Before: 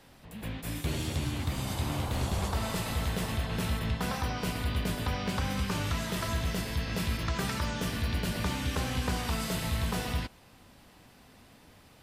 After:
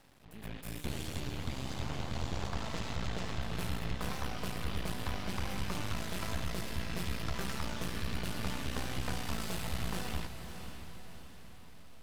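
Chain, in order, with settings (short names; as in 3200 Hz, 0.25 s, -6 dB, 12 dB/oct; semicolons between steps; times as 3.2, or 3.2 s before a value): 1.2–3.42 steep low-pass 7200 Hz 48 dB/oct; half-wave rectifier; diffused feedback echo 0.578 s, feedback 49%, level -9 dB; gain -2.5 dB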